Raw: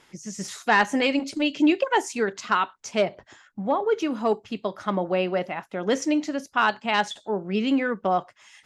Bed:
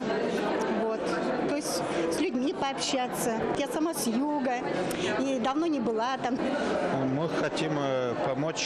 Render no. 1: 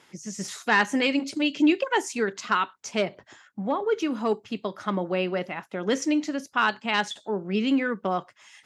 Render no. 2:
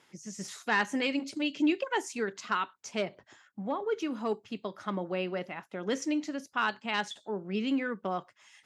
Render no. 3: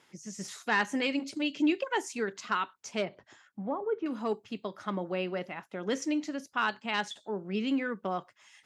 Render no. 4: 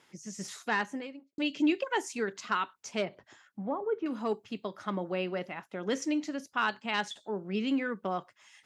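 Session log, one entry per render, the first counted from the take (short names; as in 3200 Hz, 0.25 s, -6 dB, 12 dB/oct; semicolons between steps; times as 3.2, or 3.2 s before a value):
HPF 100 Hz; dynamic EQ 700 Hz, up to -6 dB, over -36 dBFS, Q 1.7
gain -6.5 dB
3.04–4.06 treble ducked by the level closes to 1200 Hz, closed at -30.5 dBFS
0.55–1.38 studio fade out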